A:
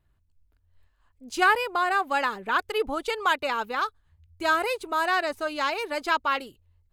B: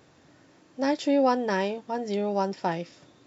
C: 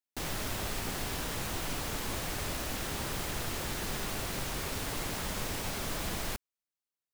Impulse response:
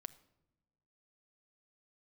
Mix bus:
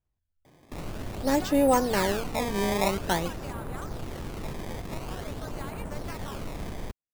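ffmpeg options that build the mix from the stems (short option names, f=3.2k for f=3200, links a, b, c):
-filter_complex "[0:a]acompressor=threshold=-26dB:ratio=6,volume=-13.5dB[a];[1:a]adelay=450,volume=-1.5dB,asplit=2[b][c];[c]volume=-6dB[d];[2:a]adynamicsmooth=sensitivity=2:basefreq=590,adelay=550,volume=2.5dB[e];[3:a]atrim=start_sample=2205[f];[d][f]afir=irnorm=-1:irlink=0[g];[a][b][e][g]amix=inputs=4:normalize=0,acrusher=samples=18:mix=1:aa=0.000001:lfo=1:lforange=28.8:lforate=0.48"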